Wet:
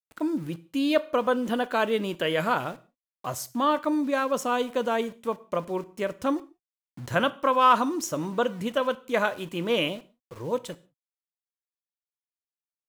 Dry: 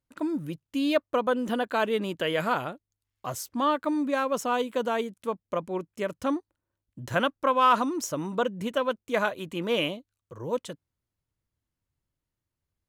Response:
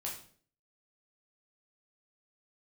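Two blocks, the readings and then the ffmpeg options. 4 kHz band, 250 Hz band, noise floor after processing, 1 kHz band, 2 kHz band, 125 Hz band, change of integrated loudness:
+1.5 dB, +1.5 dB, below −85 dBFS, +1.5 dB, +1.5 dB, +1.5 dB, +1.5 dB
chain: -filter_complex "[0:a]aeval=exprs='val(0)*gte(abs(val(0)),0.00501)':channel_layout=same,asplit=2[link_01][link_02];[1:a]atrim=start_sample=2205,afade=type=out:start_time=0.24:duration=0.01,atrim=end_sample=11025[link_03];[link_02][link_03]afir=irnorm=-1:irlink=0,volume=-11.5dB[link_04];[link_01][link_04]amix=inputs=2:normalize=0"

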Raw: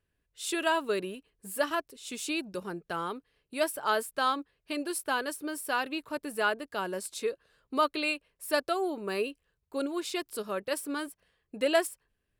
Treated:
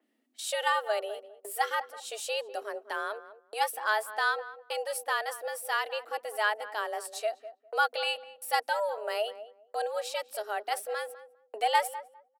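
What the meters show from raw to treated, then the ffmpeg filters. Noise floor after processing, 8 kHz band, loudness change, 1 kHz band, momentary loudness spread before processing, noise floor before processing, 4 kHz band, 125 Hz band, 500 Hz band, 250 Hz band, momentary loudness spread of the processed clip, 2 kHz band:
−70 dBFS, −1.0 dB, 0.0 dB, +3.0 dB, 10 LU, −81 dBFS, +1.0 dB, below −40 dB, −1.5 dB, below −20 dB, 12 LU, +2.0 dB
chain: -filter_complex "[0:a]agate=range=-48dB:threshold=-52dB:ratio=16:detection=peak,afreqshift=210,acompressor=mode=upward:threshold=-38dB:ratio=2.5,asplit=2[link_01][link_02];[link_02]adelay=202,lowpass=frequency=1000:poles=1,volume=-12dB,asplit=2[link_03][link_04];[link_04]adelay=202,lowpass=frequency=1000:poles=1,volume=0.2,asplit=2[link_05][link_06];[link_06]adelay=202,lowpass=frequency=1000:poles=1,volume=0.2[link_07];[link_01][link_03][link_05][link_07]amix=inputs=4:normalize=0,adynamicequalizer=threshold=0.00708:dfrequency=3300:dqfactor=0.7:tfrequency=3300:tqfactor=0.7:attack=5:release=100:ratio=0.375:range=2:mode=cutabove:tftype=highshelf"

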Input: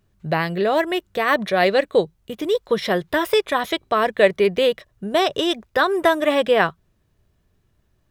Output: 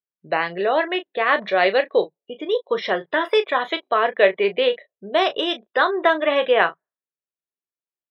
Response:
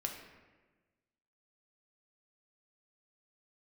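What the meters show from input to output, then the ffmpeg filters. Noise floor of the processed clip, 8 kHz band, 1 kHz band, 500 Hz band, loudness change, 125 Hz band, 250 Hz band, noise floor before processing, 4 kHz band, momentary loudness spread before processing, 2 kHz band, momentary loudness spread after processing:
below −85 dBFS, below −15 dB, +0.5 dB, −1.0 dB, −0.5 dB, below −10 dB, −5.0 dB, −65 dBFS, −0.5 dB, 6 LU, +1.0 dB, 7 LU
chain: -filter_complex "[0:a]afftdn=noise_reduction=32:noise_floor=-37,highpass=380,lowpass=3700,equalizer=frequency=2700:width=1.5:gain=2.5,asplit=2[link_01][link_02];[link_02]aecho=0:1:16|35:0.251|0.251[link_03];[link_01][link_03]amix=inputs=2:normalize=0"

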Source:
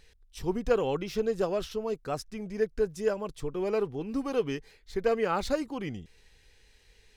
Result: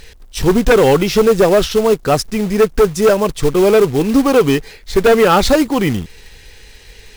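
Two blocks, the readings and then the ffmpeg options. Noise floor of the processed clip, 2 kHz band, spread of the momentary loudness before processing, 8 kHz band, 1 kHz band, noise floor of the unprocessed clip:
−41 dBFS, +19.5 dB, 9 LU, +22.0 dB, +18.0 dB, −62 dBFS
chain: -af "aeval=exprs='0.224*sin(PI/2*2.51*val(0)/0.224)':channel_layout=same,acrusher=bits=4:mode=log:mix=0:aa=0.000001,volume=8.5dB"

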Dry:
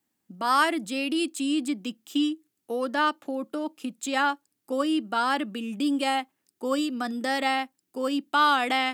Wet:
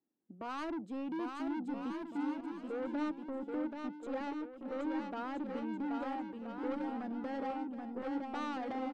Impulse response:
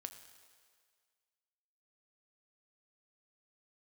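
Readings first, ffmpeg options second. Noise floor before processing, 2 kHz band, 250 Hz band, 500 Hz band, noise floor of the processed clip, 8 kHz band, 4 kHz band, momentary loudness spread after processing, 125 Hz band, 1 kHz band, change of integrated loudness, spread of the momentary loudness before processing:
−80 dBFS, −20.0 dB, −9.0 dB, −10.0 dB, −53 dBFS, below −25 dB, −25.0 dB, 4 LU, can't be measured, −15.5 dB, −12.5 dB, 11 LU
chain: -af "bandpass=frequency=360:width_type=q:width=1.4:csg=0,asoftclip=type=tanh:threshold=-33.5dB,aecho=1:1:780|1326|1708|1976|2163:0.631|0.398|0.251|0.158|0.1,volume=-2.5dB"

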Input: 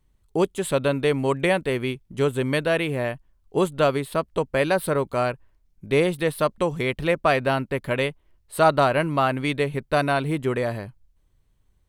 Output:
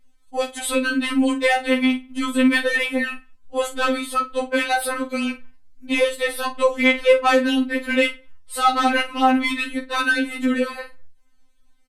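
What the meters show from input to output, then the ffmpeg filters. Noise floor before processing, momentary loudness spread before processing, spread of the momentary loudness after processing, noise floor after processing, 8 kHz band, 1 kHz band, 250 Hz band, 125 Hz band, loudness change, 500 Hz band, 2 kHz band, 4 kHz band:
−65 dBFS, 8 LU, 10 LU, −53 dBFS, +6.5 dB, +3.0 dB, +5.5 dB, below −25 dB, +3.0 dB, −0.5 dB, +6.5 dB, +7.0 dB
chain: -filter_complex "[0:a]lowpass=11000,equalizer=frequency=430:width_type=o:width=1.9:gain=-6.5,acontrast=89,asoftclip=type=tanh:threshold=-7.5dB,asplit=2[link_01][link_02];[link_02]adelay=44,volume=-11dB[link_03];[link_01][link_03]amix=inputs=2:normalize=0,asplit=2[link_04][link_05];[link_05]adelay=98,lowpass=frequency=3400:poles=1,volume=-23.5dB,asplit=2[link_06][link_07];[link_07]adelay=98,lowpass=frequency=3400:poles=1,volume=0.24[link_08];[link_06][link_08]amix=inputs=2:normalize=0[link_09];[link_04][link_09]amix=inputs=2:normalize=0,afftfilt=real='re*3.46*eq(mod(b,12),0)':imag='im*3.46*eq(mod(b,12),0)':win_size=2048:overlap=0.75,volume=2.5dB"

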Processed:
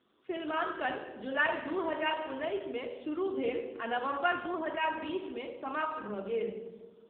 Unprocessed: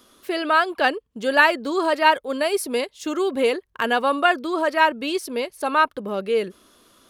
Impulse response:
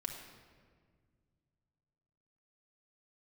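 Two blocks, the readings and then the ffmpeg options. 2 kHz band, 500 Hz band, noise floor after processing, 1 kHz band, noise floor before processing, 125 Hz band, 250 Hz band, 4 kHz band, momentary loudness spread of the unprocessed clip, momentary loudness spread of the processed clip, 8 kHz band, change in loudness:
−13.0 dB, −12.0 dB, −59 dBFS, −13.5 dB, −65 dBFS, can't be measured, −10.5 dB, −15.0 dB, 9 LU, 9 LU, below −40 dB, −13.0 dB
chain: -filter_complex "[1:a]atrim=start_sample=2205,asetrate=66150,aresample=44100[link_01];[0:a][link_01]afir=irnorm=-1:irlink=0,volume=-7.5dB" -ar 8000 -c:a libopencore_amrnb -b:a 7400

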